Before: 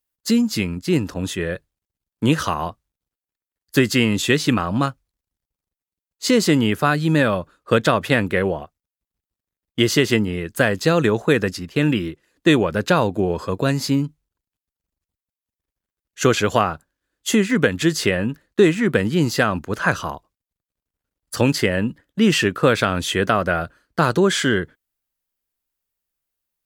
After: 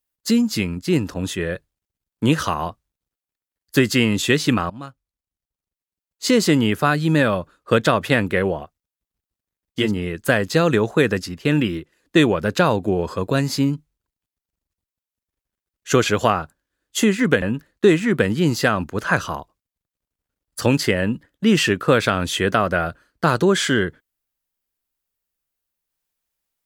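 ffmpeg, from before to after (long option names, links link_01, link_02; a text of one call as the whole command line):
ffmpeg -i in.wav -filter_complex "[0:a]asplit=4[link_01][link_02][link_03][link_04];[link_01]atrim=end=4.7,asetpts=PTS-STARTPTS,afade=type=out:start_time=4.696:duration=0.004:curve=hsin:silence=0.112202[link_05];[link_02]atrim=start=4.7:end=9.92,asetpts=PTS-STARTPTS,afade=type=in:duration=1.6:silence=0.112202[link_06];[link_03]atrim=start=10.07:end=17.732[link_07];[link_04]atrim=start=18.168[link_08];[link_05][link_06]concat=n=2:v=0:a=1[link_09];[link_09][link_07]acrossfade=duration=0.16:curve1=tri:curve2=tri[link_10];[link_10][link_08]acrossfade=duration=0.004:curve1=hsin:curve2=hsin" out.wav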